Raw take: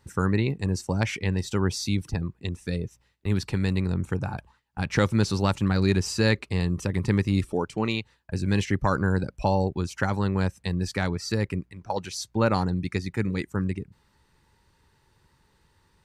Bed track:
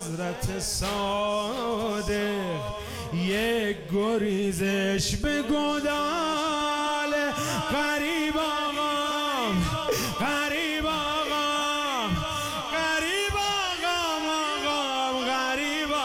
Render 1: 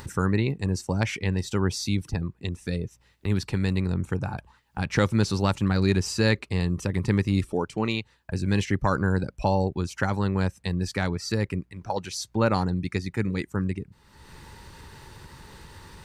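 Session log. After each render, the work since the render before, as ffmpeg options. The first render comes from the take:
-af "acompressor=mode=upward:threshold=-29dB:ratio=2.5"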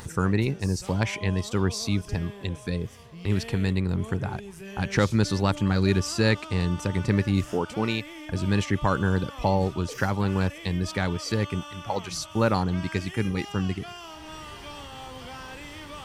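-filter_complex "[1:a]volume=-15dB[a];[0:a][a]amix=inputs=2:normalize=0"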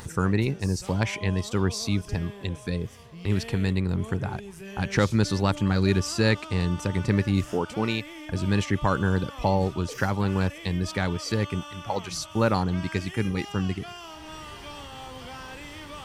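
-af anull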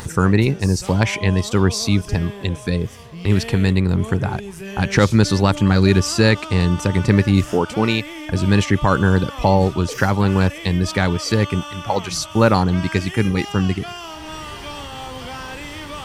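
-af "volume=8.5dB,alimiter=limit=-2dB:level=0:latency=1"

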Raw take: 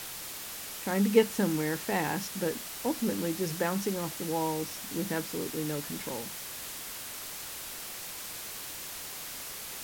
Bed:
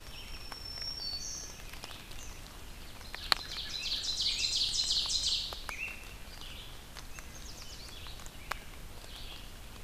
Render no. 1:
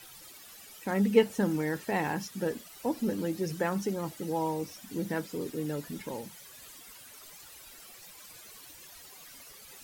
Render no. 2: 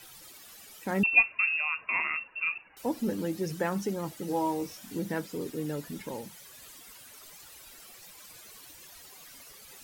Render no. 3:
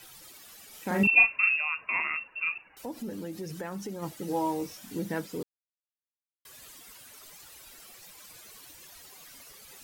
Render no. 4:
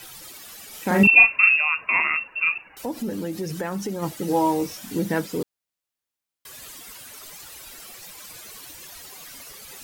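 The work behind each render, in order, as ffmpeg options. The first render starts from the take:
-af "afftdn=nr=14:nf=-41"
-filter_complex "[0:a]asettb=1/sr,asplit=3[a][b][c];[a]atrim=end=1.034[d];[b]atrim=start=1.03:end=2.77,asetpts=PTS-STARTPTS,afade=t=in:d=0.004:c=qsin,afade=t=out:st=1.736:d=0.004:c=qsin,lowpass=f=2.5k:t=q:w=0.5098,lowpass=f=2.5k:t=q:w=0.6013,lowpass=f=2.5k:t=q:w=0.9,lowpass=f=2.5k:t=q:w=2.563,afreqshift=-2900[e];[c]atrim=start=2.766[f];[d][e]acrossfade=d=0.004:c1=hsin:c2=qsin[g];[g][f]acrossfade=d=0.004:c1=qsin:c2=hsin,asettb=1/sr,asplit=3[h][i][j];[h]atrim=end=4.264[k];[i]atrim=start=4.26:end=4.99,asetpts=PTS-STARTPTS,afade=t=in:d=0.004:c=qsin,afade=t=out:st=0.726:d=0.004:c=qsin,asplit=2[l][m];[m]adelay=22,volume=-5dB[n];[l][n]amix=inputs=2:normalize=0,atrim=end_sample=32193[o];[j]atrim=start=4.986[p];[k][o]acrossfade=d=0.004:c1=hsin:c2=qsin[q];[q][p]acrossfade=d=0.004:c1=qsin:c2=hsin"
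-filter_complex "[0:a]asettb=1/sr,asplit=3[a][b][c];[a]atrim=end=0.694[d];[b]atrim=start=0.69:end=1.56,asetpts=PTS-STARTPTS,afade=t=in:d=0.004:c=qsin,afade=t=out:st=0.866:d=0.004:c=qsin,asplit=2[e][f];[f]adelay=40,volume=-2.5dB[g];[e][g]amix=inputs=2:normalize=0,atrim=end_sample=38367[h];[c]atrim=start=1.556[i];[d][h]acrossfade=d=0.004:c1=hsin:c2=qsin[j];[j][i]acrossfade=d=0.004:c1=qsin:c2=hsin,asplit=3[k][l][m];[k]afade=t=out:st=2.71:d=0.02[n];[l]acompressor=threshold=-36dB:ratio=2.5:attack=3.2:release=140:knee=1:detection=peak,afade=t=in:st=2.71:d=0.02,afade=t=out:st=4.01:d=0.02[o];[m]afade=t=in:st=4.01:d=0.02[p];[n][o][p]amix=inputs=3:normalize=0,asplit=3[q][r][s];[q]atrim=end=5.43,asetpts=PTS-STARTPTS,afade=t=out:st=5.426:d=0.004:c=hsin[t];[r]atrim=start=5.43:end=6.45,asetpts=PTS-STARTPTS,volume=0[u];[s]atrim=start=6.45,asetpts=PTS-STARTPTS,afade=t=in:d=0.004:c=hsin[v];[t][u][v]concat=n=3:v=0:a=1"
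-af "volume=8.5dB,alimiter=limit=-3dB:level=0:latency=1"

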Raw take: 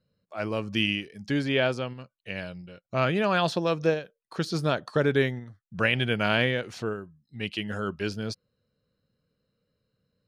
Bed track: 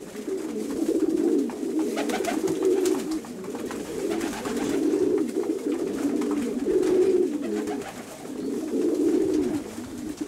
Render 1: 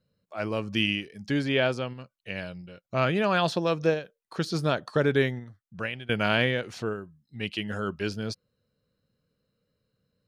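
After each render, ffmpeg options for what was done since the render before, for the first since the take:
-filter_complex "[0:a]asplit=2[a][b];[a]atrim=end=6.09,asetpts=PTS-STARTPTS,afade=t=out:st=5.39:d=0.7:silence=0.0841395[c];[b]atrim=start=6.09,asetpts=PTS-STARTPTS,afade=t=in:d=0.004:c=hsin:silence=0.0841395[d];[c][d]concat=n=2:v=0:a=1"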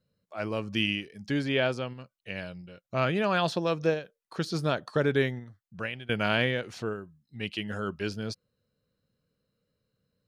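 -af "volume=-2dB"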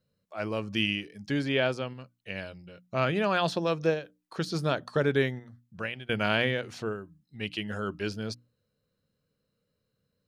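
-af "bandreject=f=60:t=h:w=6,bandreject=f=120:t=h:w=6,bandreject=f=180:t=h:w=6,bandreject=f=240:t=h:w=6,bandreject=f=300:t=h:w=6"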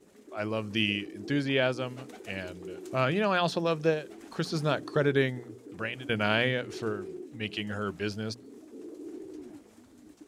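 -filter_complex "[1:a]volume=-20dB[a];[0:a][a]amix=inputs=2:normalize=0"

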